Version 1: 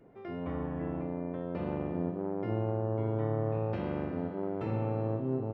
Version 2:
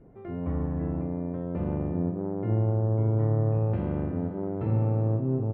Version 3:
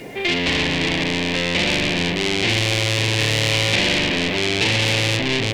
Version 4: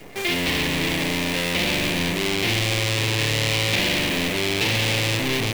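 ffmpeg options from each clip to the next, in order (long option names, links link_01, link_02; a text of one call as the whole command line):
ffmpeg -i in.wav -af "lowpass=frequency=2200:poles=1,aemphasis=mode=reproduction:type=bsi" out.wav
ffmpeg -i in.wav -filter_complex "[0:a]asplit=2[link_01][link_02];[link_02]highpass=frequency=720:poles=1,volume=36dB,asoftclip=type=tanh:threshold=-13dB[link_03];[link_01][link_03]amix=inputs=2:normalize=0,lowpass=frequency=2000:poles=1,volume=-6dB,aexciter=amount=12.4:drive=8.8:freq=2100,volume=-3dB" out.wav
ffmpeg -i in.wav -af "acrusher=bits=5:dc=4:mix=0:aa=0.000001,volume=-3.5dB" out.wav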